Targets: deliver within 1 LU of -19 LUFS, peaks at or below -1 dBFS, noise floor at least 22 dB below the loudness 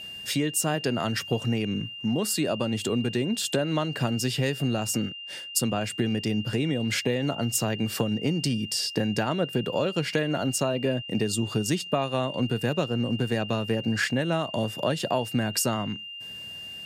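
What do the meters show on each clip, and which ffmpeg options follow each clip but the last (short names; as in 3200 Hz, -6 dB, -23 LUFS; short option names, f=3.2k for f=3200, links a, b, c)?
steady tone 2800 Hz; tone level -37 dBFS; loudness -27.0 LUFS; peak -10.5 dBFS; loudness target -19.0 LUFS
-> -af "bandreject=f=2.8k:w=30"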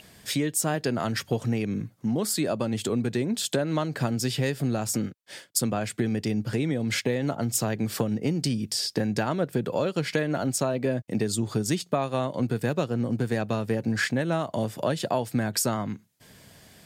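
steady tone none; loudness -27.5 LUFS; peak -11.0 dBFS; loudness target -19.0 LUFS
-> -af "volume=8.5dB"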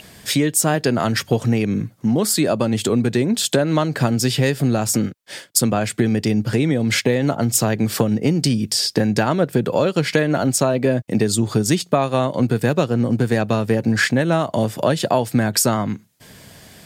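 loudness -19.0 LUFS; peak -2.5 dBFS; noise floor -47 dBFS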